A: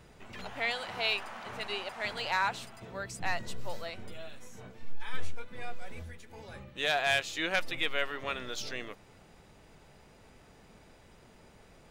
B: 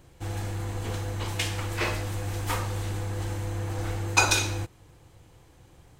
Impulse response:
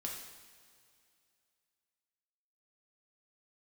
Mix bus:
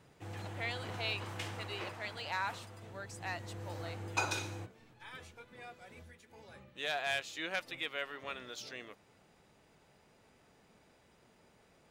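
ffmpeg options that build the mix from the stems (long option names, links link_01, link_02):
-filter_complex "[0:a]highpass=frequency=120:poles=1,volume=-7dB[link_01];[1:a]highpass=frequency=100:width=0.5412,highpass=frequency=100:width=1.3066,highshelf=frequency=3800:gain=-8,volume=-1dB,afade=type=out:start_time=1.46:duration=0.57:silence=0.334965,afade=type=in:start_time=3.02:duration=0.69:silence=0.354813[link_02];[link_01][link_02]amix=inputs=2:normalize=0"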